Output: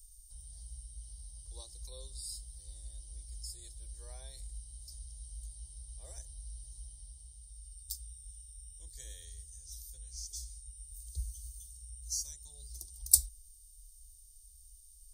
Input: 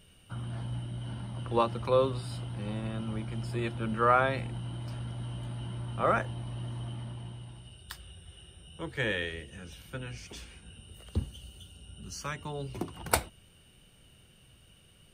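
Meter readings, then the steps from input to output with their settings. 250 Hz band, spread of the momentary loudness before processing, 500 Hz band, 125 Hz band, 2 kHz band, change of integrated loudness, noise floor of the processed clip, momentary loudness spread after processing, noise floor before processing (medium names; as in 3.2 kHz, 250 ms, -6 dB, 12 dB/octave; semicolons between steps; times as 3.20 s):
under -35 dB, 22 LU, -31.0 dB, -15.0 dB, -34.0 dB, -6.5 dB, -57 dBFS, 15 LU, -59 dBFS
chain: inverse Chebyshev band-stop 100–2900 Hz, stop band 40 dB; trim +9.5 dB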